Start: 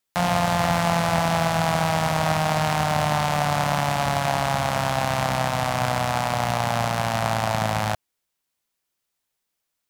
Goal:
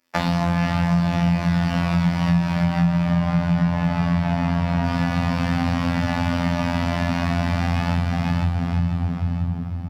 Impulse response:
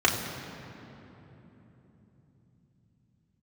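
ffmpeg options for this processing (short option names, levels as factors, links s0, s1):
-filter_complex "[0:a]acrossover=split=220|1800|5400[s0][s1][s2][s3];[s0]acompressor=threshold=0.0447:ratio=4[s4];[s1]acompressor=threshold=0.0178:ratio=4[s5];[s2]acompressor=threshold=0.0178:ratio=4[s6];[s3]acompressor=threshold=0.00501:ratio=4[s7];[s4][s5][s6][s7]amix=inputs=4:normalize=0,asettb=1/sr,asplit=3[s8][s9][s10];[s8]atrim=end=2.554[s11];[s9]atrim=start=2.55:end=4.84,asetpts=PTS-STARTPTS,afade=t=in:d=0.004:c=qsin,afade=t=out:st=2.286:d=0.004:c=qsin,highshelf=f=2700:g=-9[s12];[s10]atrim=start=4.836[s13];[s11][s12]acrossfade=d=0.004:c1=hsin:c2=qsin[s14];[s14][s13]acrossfade=d=0.004:c1=qsin:c2=hsin,aecho=1:1:486|972|1458|1944:0.562|0.186|0.0612|0.0202[s15];[1:a]atrim=start_sample=2205,asetrate=34398,aresample=44100[s16];[s15][s16]afir=irnorm=-1:irlink=0,afftfilt=real='hypot(re,im)*cos(PI*b)':imag='0':win_size=2048:overlap=0.75,equalizer=f=240:t=o:w=0.47:g=9.5,acompressor=threshold=0.141:ratio=6"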